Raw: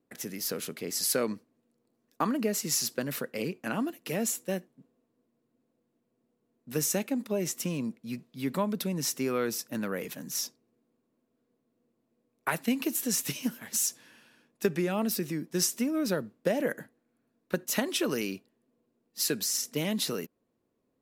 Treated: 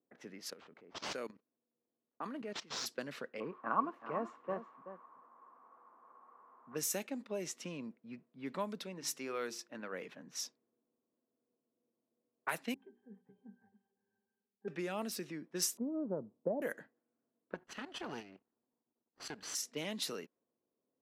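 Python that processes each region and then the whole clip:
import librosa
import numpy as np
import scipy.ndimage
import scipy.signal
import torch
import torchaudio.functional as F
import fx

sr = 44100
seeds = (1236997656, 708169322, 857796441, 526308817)

y = fx.chain(x, sr, fx.level_steps(step_db=16),
    fx.resample_bad(factor=4, down='none', up='hold'), at=(0.5, 2.86))
y = fx.chain(y, sr, fx.crossing_spikes(level_db=-33.0),
    fx.lowpass_res(hz=1100.0, q=9.7),
    fx.echo_single(ms=379, db=-11.5), at=(3.4, 6.75))
y = fx.chain(y, sr, fx.low_shelf(hz=190.0, db=-6.5),
    fx.hum_notches(base_hz=50, count=8), at=(8.84, 9.93))
y = fx.chain(y, sr, fx.air_absorb(metres=490.0),
    fx.hum_notches(base_hz=60, count=9),
    fx.octave_resonator(note='G', decay_s=0.13), at=(12.74, 14.68))
y = fx.chain(y, sr, fx.steep_lowpass(hz=990.0, slope=36),
    fx.low_shelf(hz=130.0, db=11.0), at=(15.77, 16.62))
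y = fx.chain(y, sr, fx.lower_of_two(delay_ms=0.65),
    fx.level_steps(step_db=11), at=(17.54, 19.55))
y = fx.highpass(y, sr, hz=390.0, slope=6)
y = fx.env_lowpass(y, sr, base_hz=950.0, full_db=-26.5)
y = y * 10.0 ** (-6.5 / 20.0)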